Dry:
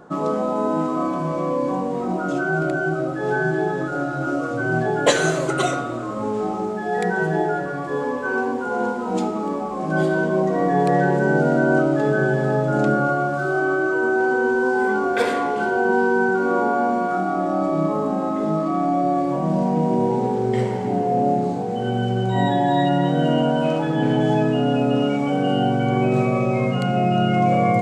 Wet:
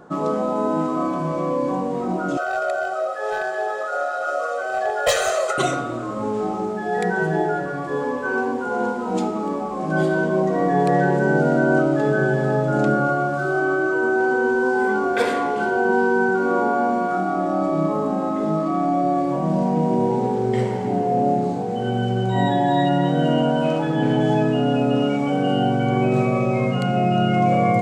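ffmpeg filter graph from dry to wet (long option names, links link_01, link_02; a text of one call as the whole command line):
ffmpeg -i in.wav -filter_complex "[0:a]asettb=1/sr,asplit=3[link_01][link_02][link_03];[link_01]atrim=end=2.374[link_04];[link_02]atrim=start=2.37:end=5.58,asetpts=PTS-STARTPTS,afade=type=in:duration=0.004:curve=qsin,afade=type=out:start_time=3.206:duration=0.004:curve=qsin,highpass=frequency=470:width=0.5412,highpass=frequency=470:width=1.3066,volume=17.5dB,asoftclip=hard,volume=-17.5dB,aecho=1:1:1.6:0.88,atrim=end_sample=141561[link_05];[link_03]atrim=start=5.576[link_06];[link_04][link_05]acrossfade=duration=0.004:curve1=hsin:curve2=qsin[link_07];[link_07][link_06]acrossfade=duration=0.004:curve1=qsin:curve2=hsin" out.wav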